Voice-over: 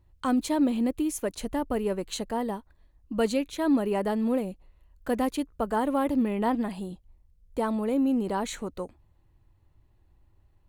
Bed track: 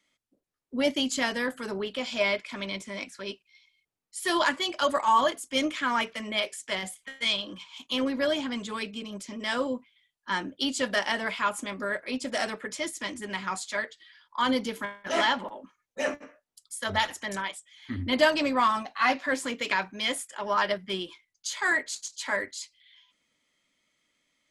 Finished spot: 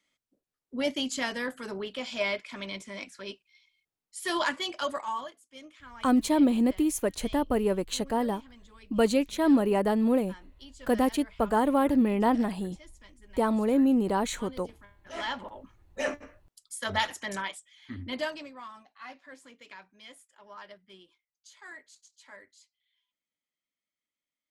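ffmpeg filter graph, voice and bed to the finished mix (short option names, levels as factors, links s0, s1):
-filter_complex "[0:a]adelay=5800,volume=1.26[s0];[1:a]volume=6.68,afade=t=out:st=4.68:d=0.65:silence=0.125893,afade=t=in:st=15.01:d=0.71:silence=0.1,afade=t=out:st=17.45:d=1.07:silence=0.105925[s1];[s0][s1]amix=inputs=2:normalize=0"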